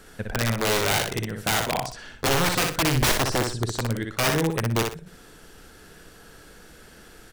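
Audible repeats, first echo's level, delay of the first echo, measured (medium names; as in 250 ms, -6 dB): 2, -4.5 dB, 61 ms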